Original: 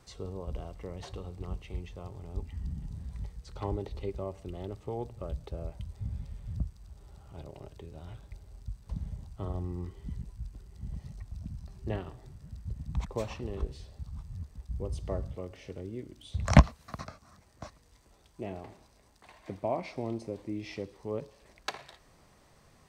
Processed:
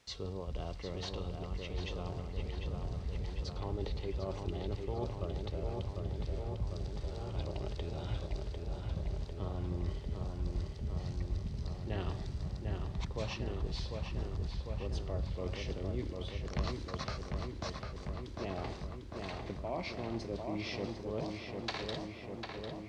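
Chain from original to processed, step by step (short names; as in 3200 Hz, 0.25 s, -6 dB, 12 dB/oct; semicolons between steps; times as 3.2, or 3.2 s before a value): gate with hold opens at -47 dBFS; bell 4500 Hz +12 dB 1.6 oct; reverse; compressor 6:1, threshold -43 dBFS, peak gain reduction 30 dB; reverse; added noise white -70 dBFS; air absorption 100 m; on a send: darkening echo 0.749 s, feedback 77%, low-pass 3100 Hz, level -4 dB; on the sum: gain +7 dB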